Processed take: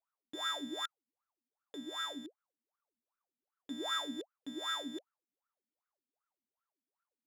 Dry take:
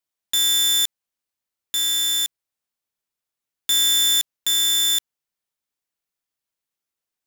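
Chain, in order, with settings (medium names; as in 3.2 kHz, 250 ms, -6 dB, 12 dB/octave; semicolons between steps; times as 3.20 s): wah-wah 2.6 Hz 230–1400 Hz, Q 20; trim +16.5 dB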